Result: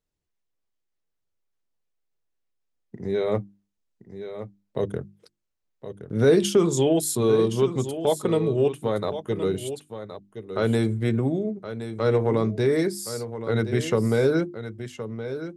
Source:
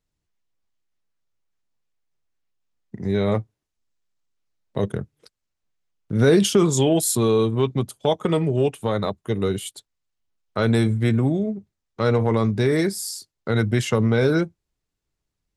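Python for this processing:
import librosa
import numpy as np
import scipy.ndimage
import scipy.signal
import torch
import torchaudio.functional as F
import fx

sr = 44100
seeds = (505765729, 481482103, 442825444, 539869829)

p1 = fx.peak_eq(x, sr, hz=430.0, db=5.0, octaves=1.2)
p2 = fx.hum_notches(p1, sr, base_hz=50, count=7)
p3 = p2 + fx.echo_single(p2, sr, ms=1069, db=-11.0, dry=0)
y = F.gain(torch.from_numpy(p3), -5.0).numpy()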